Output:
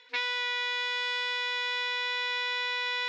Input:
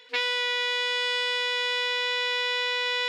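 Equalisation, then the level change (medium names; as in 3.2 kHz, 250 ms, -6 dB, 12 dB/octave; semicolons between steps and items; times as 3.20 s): cabinet simulation 320–5900 Hz, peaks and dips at 470 Hz -9 dB, 680 Hz -7 dB, 1.2 kHz -4 dB, 1.8 kHz -3 dB, 3 kHz -8 dB, 4.7 kHz -6 dB; 0.0 dB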